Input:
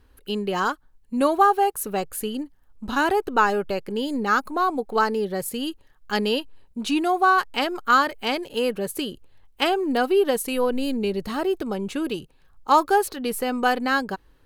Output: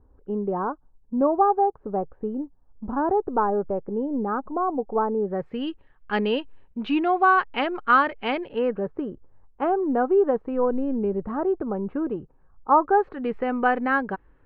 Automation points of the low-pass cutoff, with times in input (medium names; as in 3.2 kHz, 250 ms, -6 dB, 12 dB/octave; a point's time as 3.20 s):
low-pass 24 dB/octave
5.18 s 1 kHz
5.65 s 2.7 kHz
8.44 s 2.7 kHz
8.88 s 1.3 kHz
12.80 s 1.3 kHz
13.29 s 2.1 kHz